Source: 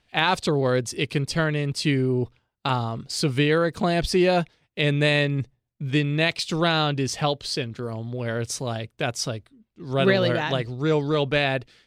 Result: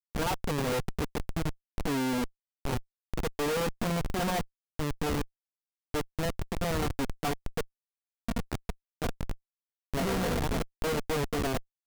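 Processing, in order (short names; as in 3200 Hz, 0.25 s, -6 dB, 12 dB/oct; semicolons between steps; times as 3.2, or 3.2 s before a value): minimum comb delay 4.3 ms; band shelf 3200 Hz -11.5 dB; Schmitt trigger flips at -25 dBFS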